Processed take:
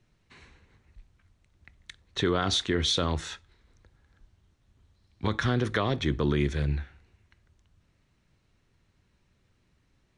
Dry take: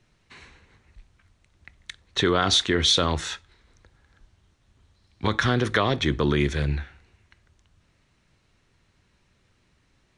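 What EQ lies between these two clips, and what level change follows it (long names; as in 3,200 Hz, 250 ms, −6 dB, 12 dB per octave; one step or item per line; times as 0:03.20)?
low-shelf EQ 450 Hz +5 dB
−7.0 dB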